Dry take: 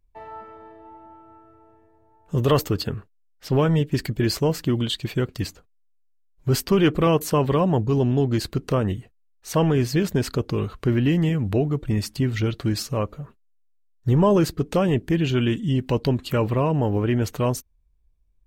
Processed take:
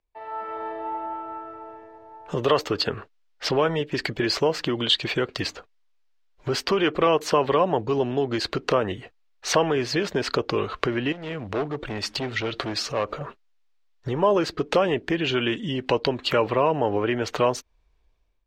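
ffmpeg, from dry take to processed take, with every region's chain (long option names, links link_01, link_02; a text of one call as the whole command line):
ffmpeg -i in.wav -filter_complex "[0:a]asettb=1/sr,asplit=3[link_01][link_02][link_03];[link_01]atrim=end=11.124[link_04];[link_02]atrim=start=11.12:end=13.21,asetpts=PTS-STARTPTS,afade=type=in:duration=0.004:curve=qsin,afade=type=out:start_time=2.086:duration=0.004:curve=qsin,asoftclip=type=hard:threshold=-20dB,acompressor=threshold=-35dB:ratio=5:attack=3.2:release=140:knee=1:detection=peak[link_05];[link_03]atrim=start=13.206[link_06];[link_04][link_05]acrossfade=duration=0.004:curve1=hsin:curve2=qsin[link_07];[link_07][link_06]acrossfade=duration=0.004:curve1=qsin:curve2=hsin,acompressor=threshold=-30dB:ratio=6,acrossover=split=370 5500:gain=0.141 1 0.0631[link_08][link_09][link_10];[link_08][link_09][link_10]amix=inputs=3:normalize=0,dynaudnorm=framelen=200:gausssize=5:maxgain=16dB" out.wav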